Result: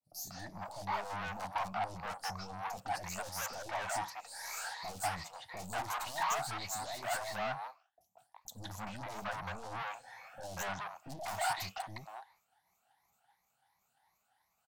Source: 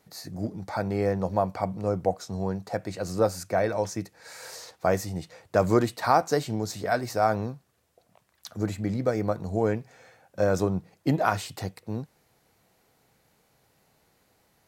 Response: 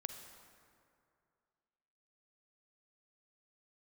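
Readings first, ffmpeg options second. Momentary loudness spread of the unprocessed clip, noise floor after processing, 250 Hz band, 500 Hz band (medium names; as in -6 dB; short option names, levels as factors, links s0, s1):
14 LU, -79 dBFS, -21.5 dB, -18.0 dB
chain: -filter_complex "[0:a]afftfilt=real='re*pow(10,14/40*sin(2*PI*(0.97*log(max(b,1)*sr/1024/100)/log(2)-(2.8)*(pts-256)/sr)))':imag='im*pow(10,14/40*sin(2*PI*(0.97*log(max(b,1)*sr/1024/100)/log(2)-(2.8)*(pts-256)/sr)))':win_size=1024:overlap=0.75,aeval=exprs='(tanh(50.1*val(0)+0.35)-tanh(0.35))/50.1':c=same,lowshelf=f=580:t=q:w=3:g=-10.5,agate=range=0.0224:threshold=0.00178:ratio=3:detection=peak,acrossover=split=570|4500[s0][s1][s2];[s2]adelay=30[s3];[s1]adelay=190[s4];[s0][s4][s3]amix=inputs=3:normalize=0,volume=1.12"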